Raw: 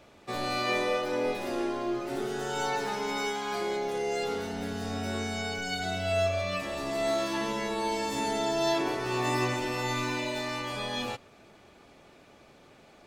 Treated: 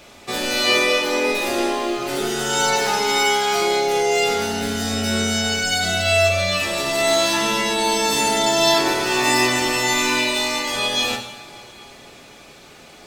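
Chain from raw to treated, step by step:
high-shelf EQ 2,300 Hz +10.5 dB
convolution reverb, pre-delay 3 ms, DRR 2.5 dB
level +7 dB

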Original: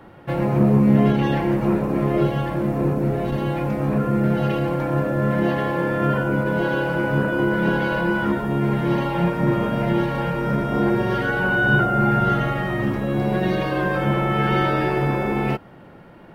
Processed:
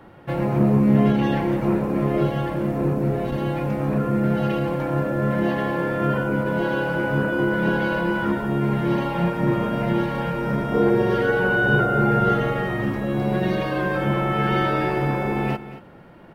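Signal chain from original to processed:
0:10.74–0:12.73: parametric band 450 Hz +11 dB 0.28 octaves
single-tap delay 229 ms −14.5 dB
level −1.5 dB

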